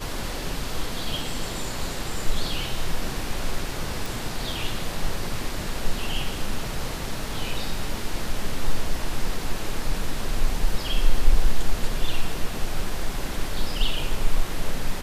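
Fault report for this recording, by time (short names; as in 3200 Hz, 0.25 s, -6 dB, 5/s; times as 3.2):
4.06 pop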